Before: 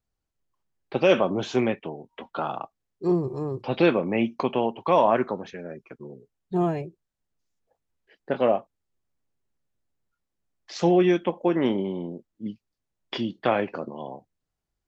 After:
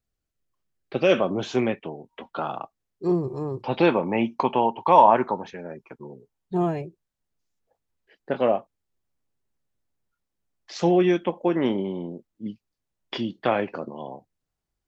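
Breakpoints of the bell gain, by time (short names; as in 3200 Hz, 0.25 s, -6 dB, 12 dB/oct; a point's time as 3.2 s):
bell 900 Hz 0.34 oct
0.96 s -9.5 dB
1.4 s -0.5 dB
3.24 s -0.5 dB
4.01 s +11.5 dB
6.11 s +11.5 dB
6.67 s +0.5 dB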